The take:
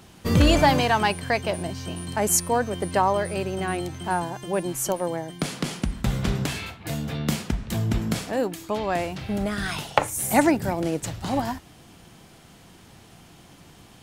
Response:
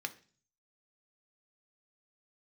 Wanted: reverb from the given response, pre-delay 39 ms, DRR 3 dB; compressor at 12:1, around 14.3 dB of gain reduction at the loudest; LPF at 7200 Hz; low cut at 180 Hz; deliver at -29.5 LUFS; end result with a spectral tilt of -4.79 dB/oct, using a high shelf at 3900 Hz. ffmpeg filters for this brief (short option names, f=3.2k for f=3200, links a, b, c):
-filter_complex "[0:a]highpass=180,lowpass=7.2k,highshelf=f=3.9k:g=-8,acompressor=threshold=-28dB:ratio=12,asplit=2[a][b];[1:a]atrim=start_sample=2205,adelay=39[c];[b][c]afir=irnorm=-1:irlink=0,volume=-4dB[d];[a][d]amix=inputs=2:normalize=0,volume=3.5dB"